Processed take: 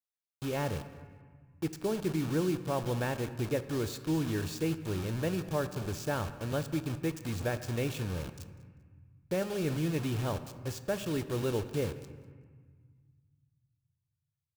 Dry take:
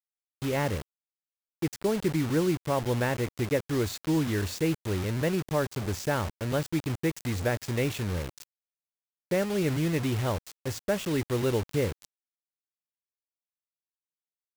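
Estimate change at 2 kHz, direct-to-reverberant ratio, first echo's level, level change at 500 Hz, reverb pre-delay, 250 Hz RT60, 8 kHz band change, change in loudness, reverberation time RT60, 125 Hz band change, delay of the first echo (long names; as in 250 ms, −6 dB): −6.0 dB, 10.5 dB, −21.0 dB, −4.5 dB, 5 ms, 2.2 s, −5.0 dB, −4.5 dB, 1.6 s, −4.0 dB, 196 ms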